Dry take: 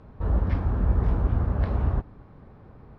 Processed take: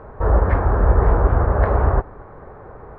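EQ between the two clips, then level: tone controls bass +1 dB, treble -9 dB; bass shelf 90 Hz +9 dB; high-order bell 850 Hz +15.5 dB 2.8 oct; 0.0 dB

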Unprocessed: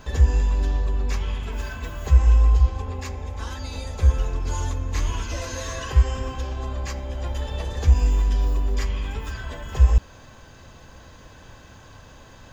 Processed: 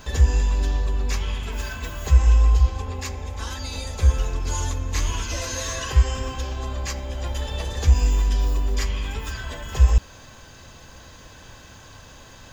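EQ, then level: treble shelf 2.5 kHz +7.5 dB; 0.0 dB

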